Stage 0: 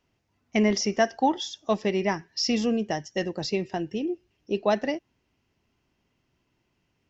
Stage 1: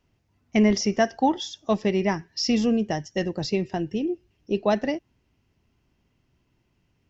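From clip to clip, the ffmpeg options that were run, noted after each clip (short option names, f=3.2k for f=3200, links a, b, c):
-af "lowshelf=f=190:g=9"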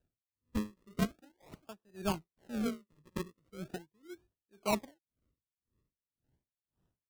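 -filter_complex "[0:a]acrossover=split=270[a][b];[b]acrusher=samples=40:mix=1:aa=0.000001:lfo=1:lforange=40:lforate=0.4[c];[a][c]amix=inputs=2:normalize=0,aeval=exprs='val(0)*pow(10,-37*(0.5-0.5*cos(2*PI*1.9*n/s))/20)':c=same,volume=-8dB"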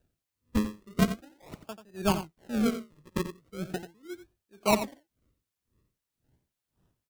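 -af "aecho=1:1:88:0.282,volume=7.5dB"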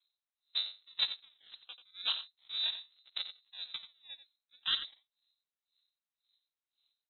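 -af "lowpass=f=3.4k:t=q:w=0.5098,lowpass=f=3.4k:t=q:w=0.6013,lowpass=f=3.4k:t=q:w=0.9,lowpass=f=3.4k:t=q:w=2.563,afreqshift=-4000,aeval=exprs='val(0)*sin(2*PI*140*n/s)':c=same,volume=-5.5dB"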